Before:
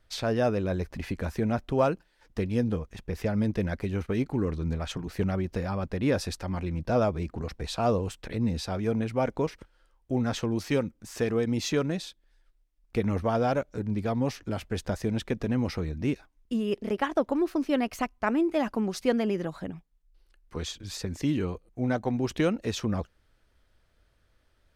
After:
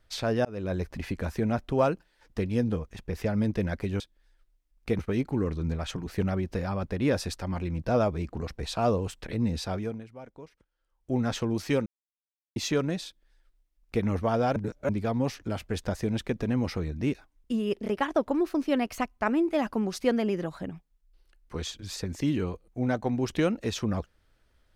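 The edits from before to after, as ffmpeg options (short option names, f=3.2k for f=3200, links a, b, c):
-filter_complex "[0:a]asplit=10[a][b][c][d][e][f][g][h][i][j];[a]atrim=end=0.45,asetpts=PTS-STARTPTS,afade=t=out:st=0.446:d=0.004:c=hsin[k];[b]atrim=start=0.45:end=4.002,asetpts=PTS-STARTPTS,afade=t=in:d=0.4:c=qsin[l];[c]atrim=start=12.068:end=13.062[m];[d]atrim=start=3.998:end=9.15,asetpts=PTS-STARTPTS,afade=t=out:st=4.762:d=0.39:c=qua:silence=0.125893[n];[e]atrim=start=9.15:end=9.76,asetpts=PTS-STARTPTS,volume=-18dB[o];[f]atrim=start=9.76:end=10.87,asetpts=PTS-STARTPTS,afade=t=in:d=0.39:c=qua:silence=0.125893,afade=t=out:st=1.106:d=0.004:c=hsin[p];[g]atrim=start=10.87:end=11.57,asetpts=PTS-STARTPTS,volume=0[q];[h]atrim=start=11.57:end=13.572,asetpts=PTS-STARTPTS,afade=t=in:d=0.004:c=hsin[r];[i]atrim=start=13.568:end=13.902,asetpts=PTS-STARTPTS,areverse[s];[j]atrim=start=13.898[t];[k][l]concat=n=2:v=0:a=1[u];[u][m]acrossfade=d=0.004:c1=hsin:c2=hsin[v];[n][o][p][q][r]concat=n=5:v=0:a=1[w];[v][w]acrossfade=d=0.004:c1=hsin:c2=hsin[x];[x][s]acrossfade=d=0.004:c1=hsin:c2=hsin[y];[y][t]acrossfade=d=0.004:c1=hsin:c2=hsin"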